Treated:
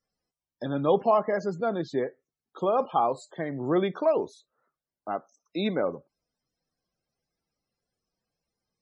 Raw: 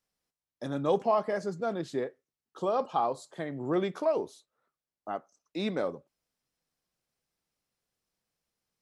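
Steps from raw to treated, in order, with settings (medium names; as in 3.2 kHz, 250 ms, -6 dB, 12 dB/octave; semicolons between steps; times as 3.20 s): loudest bins only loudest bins 64; trim +4 dB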